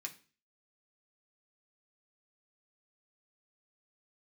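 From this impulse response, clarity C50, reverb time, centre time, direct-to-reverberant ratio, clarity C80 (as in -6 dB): 15.0 dB, 0.35 s, 8 ms, 0.0 dB, 19.5 dB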